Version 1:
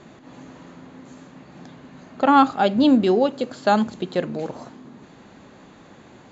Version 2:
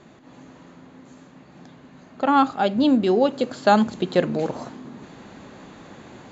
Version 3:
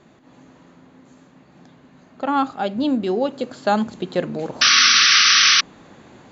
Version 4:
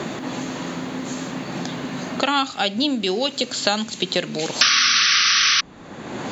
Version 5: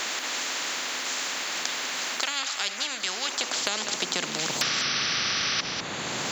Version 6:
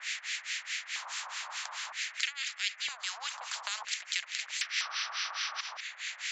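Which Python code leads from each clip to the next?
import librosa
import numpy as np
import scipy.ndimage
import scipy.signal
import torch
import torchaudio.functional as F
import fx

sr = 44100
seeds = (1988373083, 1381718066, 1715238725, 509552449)

y1 = fx.rider(x, sr, range_db=4, speed_s=0.5)
y2 = fx.spec_paint(y1, sr, seeds[0], shape='noise', start_s=4.61, length_s=1.0, low_hz=1100.0, high_hz=6100.0, level_db=-11.0)
y2 = F.gain(torch.from_numpy(y2), -2.5).numpy()
y3 = fx.band_squash(y2, sr, depth_pct=100)
y3 = F.gain(torch.from_numpy(y3), -3.0).numpy()
y4 = fx.filter_sweep_highpass(y3, sr, from_hz=1800.0, to_hz=140.0, start_s=2.97, end_s=4.58, q=1.8)
y4 = y4 + 10.0 ** (-21.0 / 20.0) * np.pad(y4, (int(199 * sr / 1000.0), 0))[:len(y4)]
y4 = fx.spectral_comp(y4, sr, ratio=4.0)
y4 = F.gain(torch.from_numpy(y4), -6.5).numpy()
y5 = scipy.signal.sosfilt(scipy.signal.ellip(3, 1.0, 50, [620.0, 8700.0], 'bandpass', fs=sr, output='sos'), y4)
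y5 = fx.harmonic_tremolo(y5, sr, hz=4.7, depth_pct=100, crossover_hz=1300.0)
y5 = fx.filter_lfo_highpass(y5, sr, shape='square', hz=0.52, low_hz=980.0, high_hz=2000.0, q=2.5)
y5 = F.gain(torch.from_numpy(y5), -5.5).numpy()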